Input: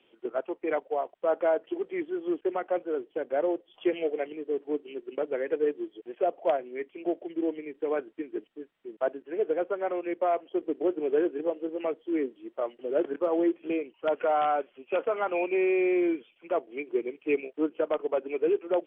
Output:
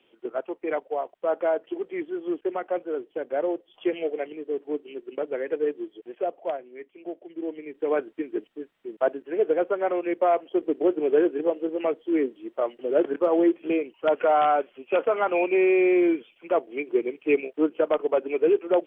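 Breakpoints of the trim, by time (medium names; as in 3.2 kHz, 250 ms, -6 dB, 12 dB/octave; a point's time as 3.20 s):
6.06 s +1 dB
6.71 s -6 dB
7.25 s -6 dB
7.94 s +5 dB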